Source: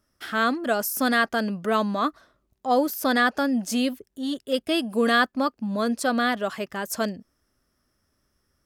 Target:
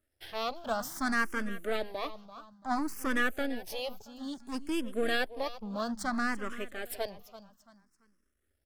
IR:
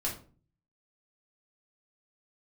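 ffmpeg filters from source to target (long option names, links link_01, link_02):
-filter_complex "[0:a]aeval=exprs='if(lt(val(0),0),0.251*val(0),val(0))':channel_layout=same,aecho=1:1:338|676|1014:0.168|0.0571|0.0194,asplit=2[link_01][link_02];[link_02]afreqshift=0.59[link_03];[link_01][link_03]amix=inputs=2:normalize=1,volume=-3.5dB"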